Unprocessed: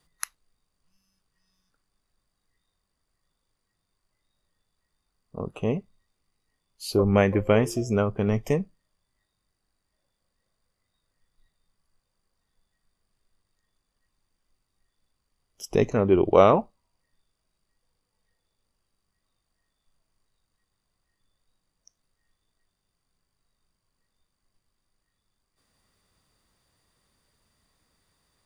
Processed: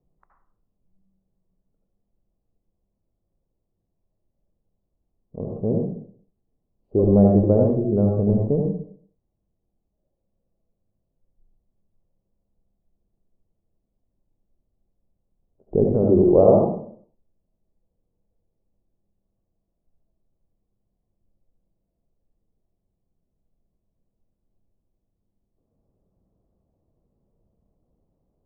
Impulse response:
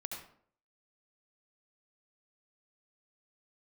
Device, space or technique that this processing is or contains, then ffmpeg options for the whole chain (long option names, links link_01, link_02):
next room: -filter_complex "[0:a]lowpass=frequency=620:width=0.5412,lowpass=frequency=620:width=1.3066[link_01];[1:a]atrim=start_sample=2205[link_02];[link_01][link_02]afir=irnorm=-1:irlink=0,volume=6dB"